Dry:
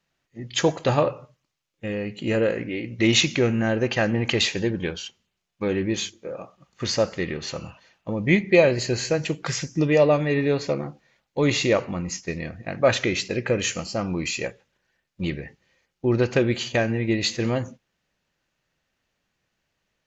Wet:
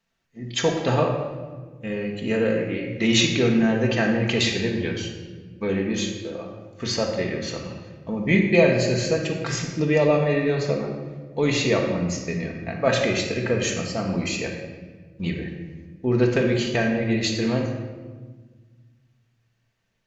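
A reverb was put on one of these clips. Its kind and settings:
rectangular room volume 1,300 cubic metres, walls mixed, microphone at 1.6 metres
level −2.5 dB

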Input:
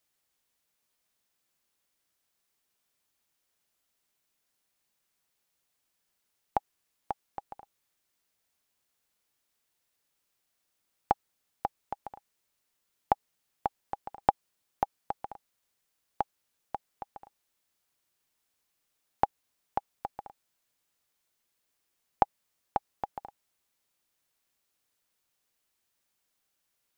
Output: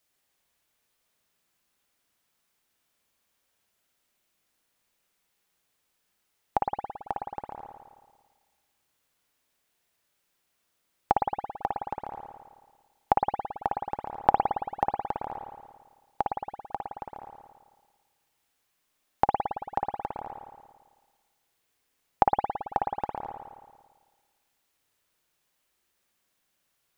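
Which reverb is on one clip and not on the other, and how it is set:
spring reverb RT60 1.5 s, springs 55 ms, chirp 50 ms, DRR 0 dB
level +2.5 dB

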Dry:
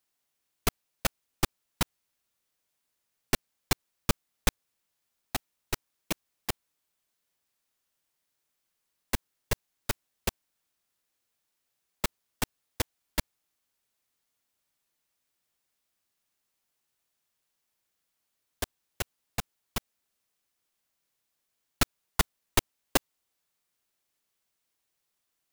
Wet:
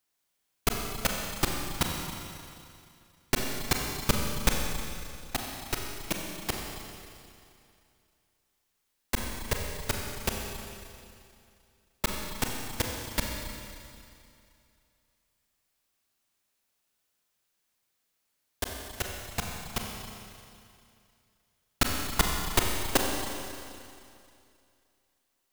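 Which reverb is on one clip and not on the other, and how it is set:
four-comb reverb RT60 2.5 s, combs from 30 ms, DRR 0.5 dB

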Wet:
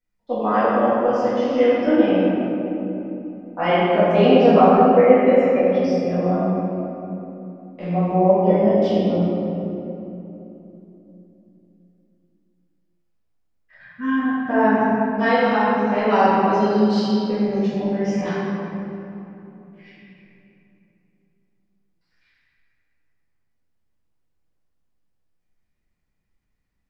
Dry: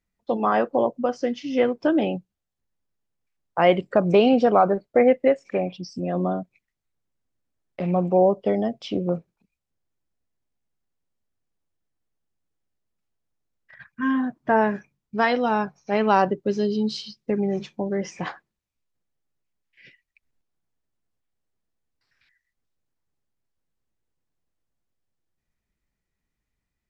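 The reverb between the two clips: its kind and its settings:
rectangular room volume 150 cubic metres, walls hard, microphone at 1.9 metres
level −9 dB

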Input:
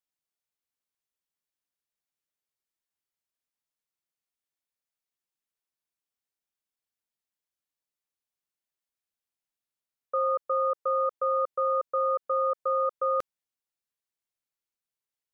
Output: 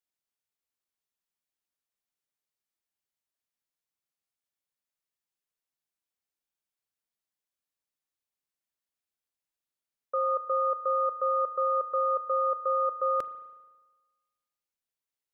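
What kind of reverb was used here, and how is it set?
spring reverb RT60 1.3 s, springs 36 ms, chirp 25 ms, DRR 15 dB
level −1.5 dB

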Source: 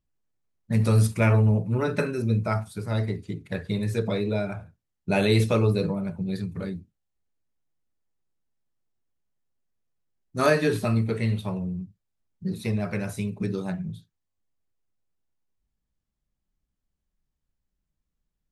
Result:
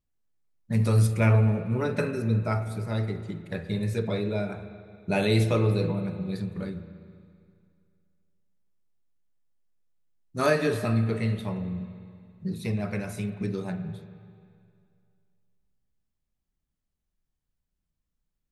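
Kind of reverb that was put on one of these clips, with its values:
spring reverb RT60 2.3 s, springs 36/44/48 ms, chirp 25 ms, DRR 9.5 dB
level −2.5 dB

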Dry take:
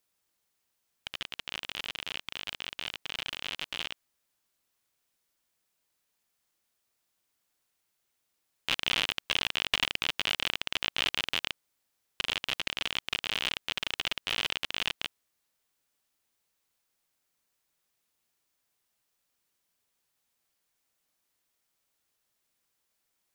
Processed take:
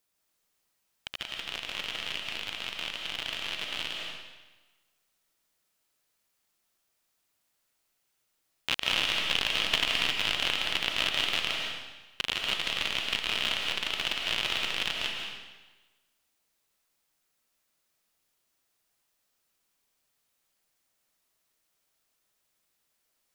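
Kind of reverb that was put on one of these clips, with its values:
comb and all-pass reverb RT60 1.2 s, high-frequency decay 0.95×, pre-delay 115 ms, DRR 0.5 dB

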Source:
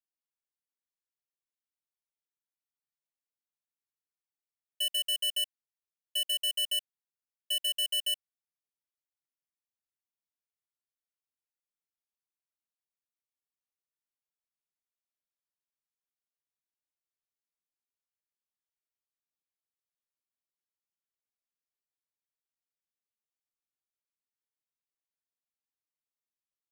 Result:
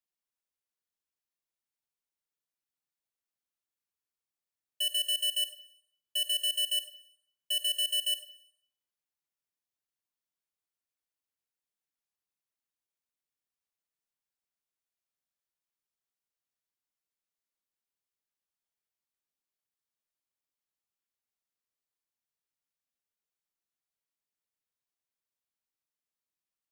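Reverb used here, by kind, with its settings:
four-comb reverb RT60 0.66 s, combs from 32 ms, DRR 11 dB

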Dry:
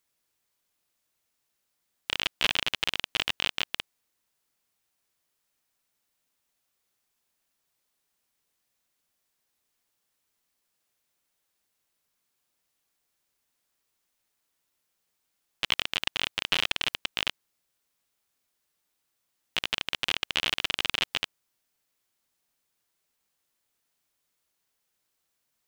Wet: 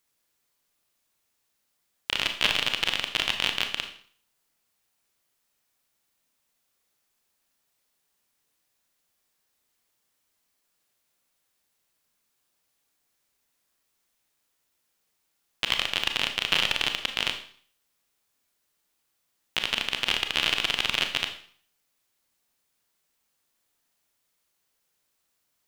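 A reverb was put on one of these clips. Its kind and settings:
four-comb reverb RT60 0.5 s, combs from 27 ms, DRR 5.5 dB
level +2 dB

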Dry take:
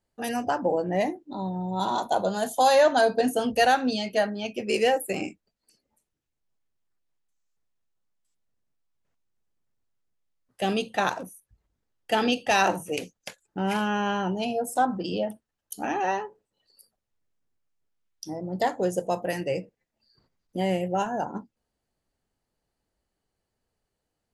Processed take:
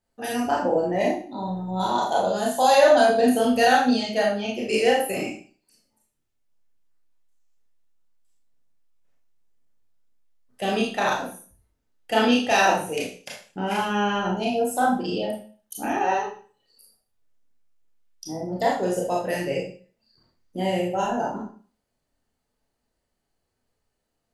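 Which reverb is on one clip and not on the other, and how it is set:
four-comb reverb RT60 0.41 s, combs from 25 ms, DRR −3 dB
level −1.5 dB

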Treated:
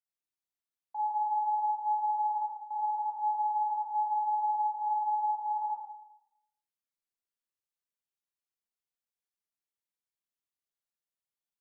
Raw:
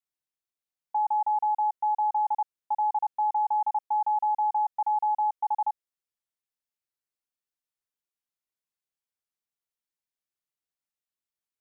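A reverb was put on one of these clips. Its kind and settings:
four-comb reverb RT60 0.83 s, combs from 32 ms, DRR −7 dB
level −12.5 dB

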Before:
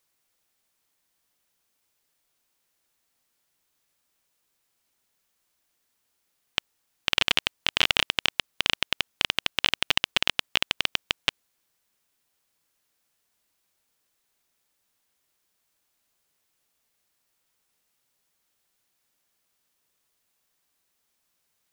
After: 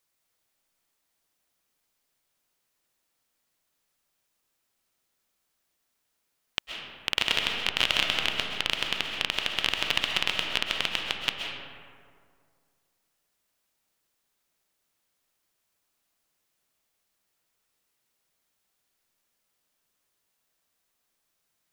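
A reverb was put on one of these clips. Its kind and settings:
comb and all-pass reverb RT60 2.1 s, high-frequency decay 0.45×, pre-delay 90 ms, DRR 1.5 dB
level −3.5 dB

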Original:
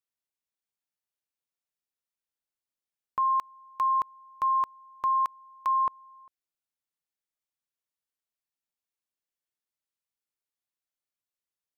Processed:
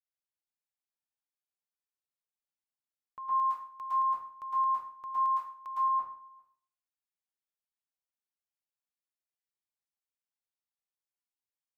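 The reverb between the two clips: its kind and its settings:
dense smooth reverb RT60 0.52 s, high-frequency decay 0.8×, pre-delay 100 ms, DRR −8 dB
level −16.5 dB

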